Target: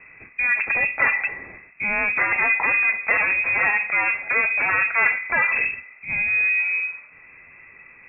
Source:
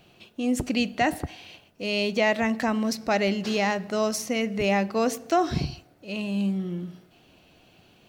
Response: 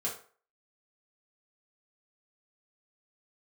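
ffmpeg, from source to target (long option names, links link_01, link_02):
-filter_complex "[0:a]aeval=exprs='0.316*sin(PI/2*4.47*val(0)/0.316)':channel_layout=same,asplit=2[link_01][link_02];[link_02]highpass=frequency=670:width_type=q:width=4.9[link_03];[1:a]atrim=start_sample=2205[link_04];[link_03][link_04]afir=irnorm=-1:irlink=0,volume=-12dB[link_05];[link_01][link_05]amix=inputs=2:normalize=0,lowpass=frequency=2300:width_type=q:width=0.5098,lowpass=frequency=2300:width_type=q:width=0.6013,lowpass=frequency=2300:width_type=q:width=0.9,lowpass=frequency=2300:width_type=q:width=2.563,afreqshift=-2700,volume=-8dB"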